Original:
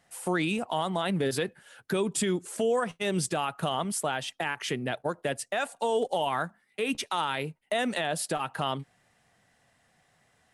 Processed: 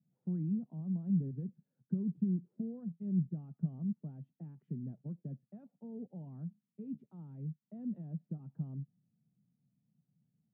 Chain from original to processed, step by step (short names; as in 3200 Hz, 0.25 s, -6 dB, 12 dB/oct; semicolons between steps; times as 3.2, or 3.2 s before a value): Butterworth band-pass 170 Hz, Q 1.9